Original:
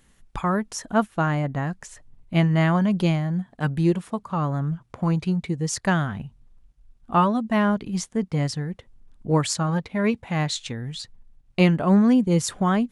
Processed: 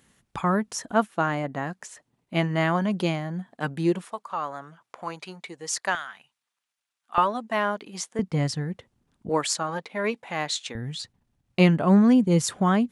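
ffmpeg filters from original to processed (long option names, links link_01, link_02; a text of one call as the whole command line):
ffmpeg -i in.wav -af "asetnsamples=nb_out_samples=441:pad=0,asendcmd='0.91 highpass f 240;4.05 highpass f 640;5.95 highpass f 1400;7.18 highpass f 450;8.19 highpass f 110;9.29 highpass f 380;10.75 highpass f 97',highpass=100" out.wav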